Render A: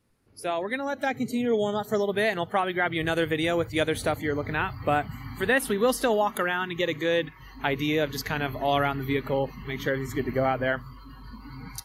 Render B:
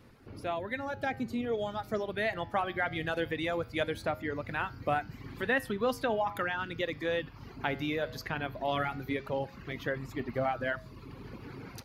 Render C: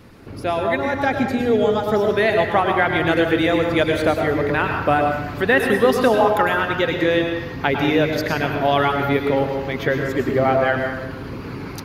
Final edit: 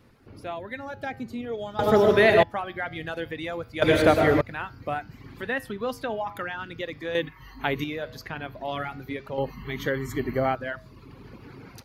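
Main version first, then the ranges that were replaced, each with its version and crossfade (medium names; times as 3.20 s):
B
1.79–2.43 s: from C
3.82–4.41 s: from C
7.15–7.84 s: from A
9.38–10.55 s: from A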